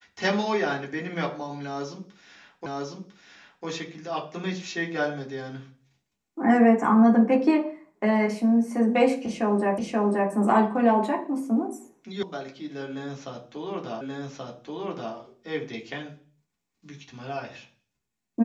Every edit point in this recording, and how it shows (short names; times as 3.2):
2.66 repeat of the last 1 s
9.78 repeat of the last 0.53 s
12.23 sound cut off
14.01 repeat of the last 1.13 s